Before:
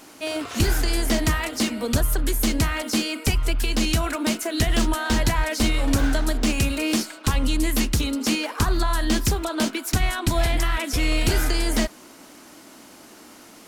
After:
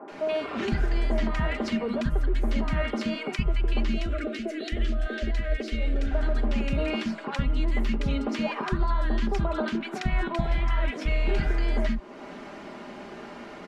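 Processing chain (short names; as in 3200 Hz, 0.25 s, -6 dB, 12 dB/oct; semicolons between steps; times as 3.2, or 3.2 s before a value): LPF 2000 Hz 12 dB/oct; comb 5 ms, depth 54%; compressor 2.5:1, threshold -36 dBFS, peak gain reduction 14.5 dB; 3.86–6.11 fixed phaser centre 390 Hz, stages 4; three bands offset in time mids, highs, lows 80/120 ms, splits 250/1200 Hz; gain +8.5 dB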